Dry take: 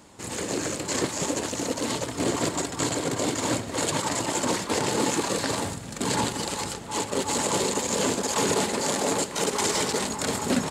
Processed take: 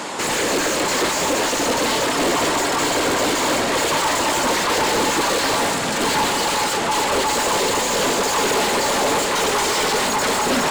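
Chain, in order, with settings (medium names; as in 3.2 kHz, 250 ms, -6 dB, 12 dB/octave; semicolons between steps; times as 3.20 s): Bessel high-pass 150 Hz, order 2; overdrive pedal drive 36 dB, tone 3.3 kHz, clips at -11 dBFS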